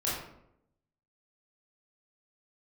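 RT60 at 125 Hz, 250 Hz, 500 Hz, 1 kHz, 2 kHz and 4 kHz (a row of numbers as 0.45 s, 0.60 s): 0.95 s, 0.95 s, 0.85 s, 0.70 s, 0.55 s, 0.45 s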